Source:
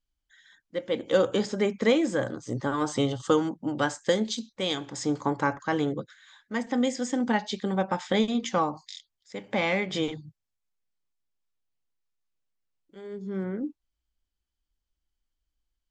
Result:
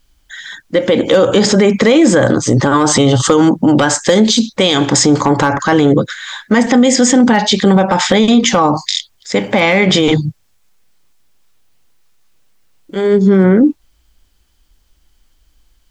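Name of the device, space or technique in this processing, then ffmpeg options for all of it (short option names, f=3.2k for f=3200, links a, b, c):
loud club master: -af "acompressor=threshold=-26dB:ratio=2.5,asoftclip=type=hard:threshold=-18.5dB,alimiter=level_in=28.5dB:limit=-1dB:release=50:level=0:latency=1,volume=-1dB"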